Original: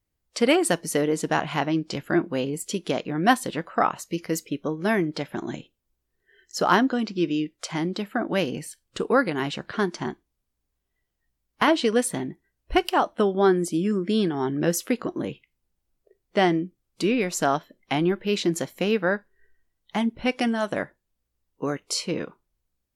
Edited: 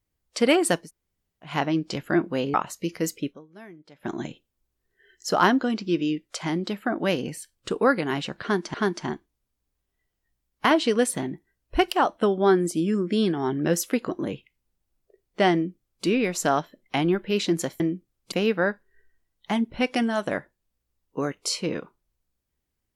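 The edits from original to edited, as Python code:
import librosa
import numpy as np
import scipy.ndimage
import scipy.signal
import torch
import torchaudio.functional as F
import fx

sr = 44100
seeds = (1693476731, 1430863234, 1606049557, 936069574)

y = fx.edit(x, sr, fx.room_tone_fill(start_s=0.83, length_s=0.66, crossfade_s=0.16),
    fx.cut(start_s=2.54, length_s=1.29),
    fx.fade_down_up(start_s=4.59, length_s=0.76, db=-22.0, fade_s=0.35, curve='exp'),
    fx.repeat(start_s=9.71, length_s=0.32, count=2),
    fx.duplicate(start_s=16.5, length_s=0.52, to_s=18.77), tone=tone)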